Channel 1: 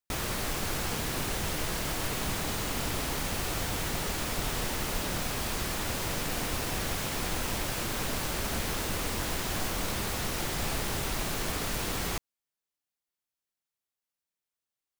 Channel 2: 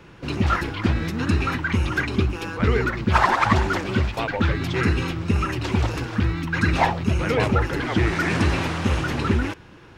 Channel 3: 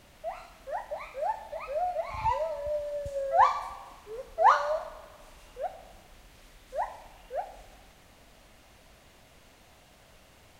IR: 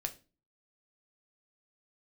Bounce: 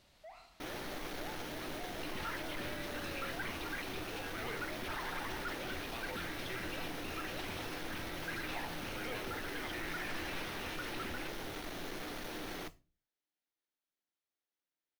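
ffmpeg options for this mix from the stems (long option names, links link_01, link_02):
-filter_complex "[0:a]asoftclip=type=tanh:threshold=-35dB,adelay=500,volume=-3dB,asplit=2[link_01][link_02];[link_02]volume=-8dB[link_03];[1:a]tiltshelf=frequency=970:gain=-8,alimiter=limit=-14.5dB:level=0:latency=1,adelay=1750,volume=-17.5dB,asplit=2[link_04][link_05];[link_05]volume=-5dB[link_06];[2:a]equalizer=frequency=4200:width_type=o:width=0.77:gain=8,acompressor=threshold=-33dB:ratio=6,asoftclip=type=hard:threshold=-36.5dB,volume=-12dB[link_07];[link_01][link_04]amix=inputs=2:normalize=0,highpass=190,equalizer=frequency=300:width_type=q:width=4:gain=8,equalizer=frequency=1100:width_type=q:width=4:gain=-8,equalizer=frequency=2700:width_type=q:width=4:gain=-4,equalizer=frequency=5100:width_type=q:width=4:gain=-5,lowpass=frequency=7000:width=0.5412,lowpass=frequency=7000:width=1.3066,alimiter=level_in=13.5dB:limit=-24dB:level=0:latency=1,volume=-13.5dB,volume=0dB[link_08];[3:a]atrim=start_sample=2205[link_09];[link_03][link_06]amix=inputs=2:normalize=0[link_10];[link_10][link_09]afir=irnorm=-1:irlink=0[link_11];[link_07][link_08][link_11]amix=inputs=3:normalize=0"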